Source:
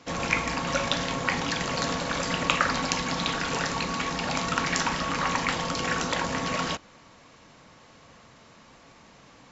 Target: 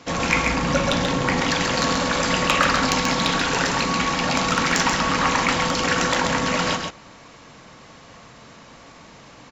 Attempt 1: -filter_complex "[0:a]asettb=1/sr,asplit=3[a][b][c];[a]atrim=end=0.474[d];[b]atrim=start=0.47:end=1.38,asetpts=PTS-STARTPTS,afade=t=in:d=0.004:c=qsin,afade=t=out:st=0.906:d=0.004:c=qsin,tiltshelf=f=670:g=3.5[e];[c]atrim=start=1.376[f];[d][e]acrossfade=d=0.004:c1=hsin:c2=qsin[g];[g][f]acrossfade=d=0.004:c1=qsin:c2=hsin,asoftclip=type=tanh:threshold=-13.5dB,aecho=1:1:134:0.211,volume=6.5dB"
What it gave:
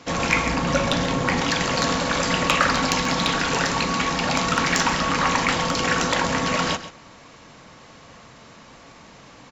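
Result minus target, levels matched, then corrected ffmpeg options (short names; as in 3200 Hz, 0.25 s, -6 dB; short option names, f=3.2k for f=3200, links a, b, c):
echo-to-direct -8.5 dB
-filter_complex "[0:a]asettb=1/sr,asplit=3[a][b][c];[a]atrim=end=0.474[d];[b]atrim=start=0.47:end=1.38,asetpts=PTS-STARTPTS,afade=t=in:d=0.004:c=qsin,afade=t=out:st=0.906:d=0.004:c=qsin,tiltshelf=f=670:g=3.5[e];[c]atrim=start=1.376[f];[d][e]acrossfade=d=0.004:c1=hsin:c2=qsin[g];[g][f]acrossfade=d=0.004:c1=qsin:c2=hsin,asoftclip=type=tanh:threshold=-13.5dB,aecho=1:1:134:0.562,volume=6.5dB"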